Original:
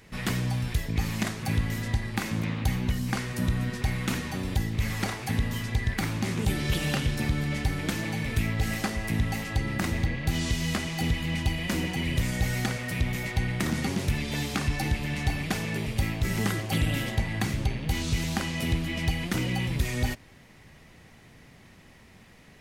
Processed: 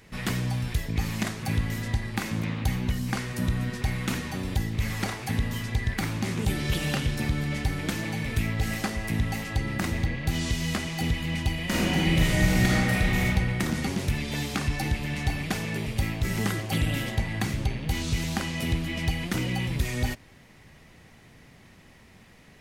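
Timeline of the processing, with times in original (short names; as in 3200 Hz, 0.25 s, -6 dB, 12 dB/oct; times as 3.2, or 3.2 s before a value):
11.65–13.25 reverb throw, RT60 1.7 s, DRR -5 dB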